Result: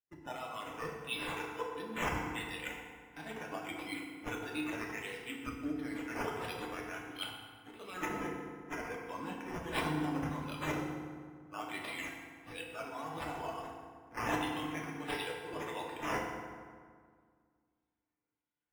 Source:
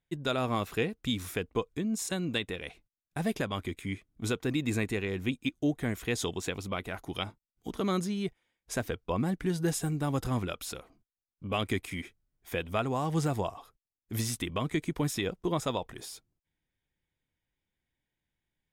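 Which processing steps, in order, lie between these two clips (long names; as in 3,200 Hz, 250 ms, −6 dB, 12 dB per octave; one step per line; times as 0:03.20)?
high-pass filter 1,400 Hz 6 dB per octave
reversed playback
downward compressor 6 to 1, threshold −48 dBFS, peak gain reduction 18.5 dB
reversed playback
high-shelf EQ 3,600 Hz +10 dB
sample-and-hold swept by an LFO 9×, swing 60% 1.5 Hz
notch filter 4,400 Hz, Q 10
feedback delay network reverb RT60 2.8 s, low-frequency decay 1.2×, high-frequency decay 0.6×, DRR −3 dB
every bin expanded away from the loudest bin 1.5 to 1
level +5 dB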